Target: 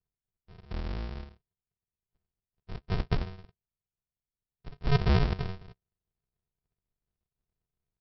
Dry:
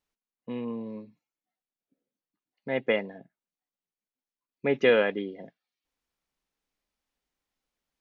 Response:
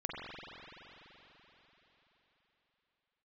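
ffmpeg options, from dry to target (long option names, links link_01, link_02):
-filter_complex "[0:a]acrossover=split=840[link_01][link_02];[link_01]adelay=230[link_03];[link_03][link_02]amix=inputs=2:normalize=0,aresample=11025,acrusher=samples=39:mix=1:aa=0.000001,aresample=44100"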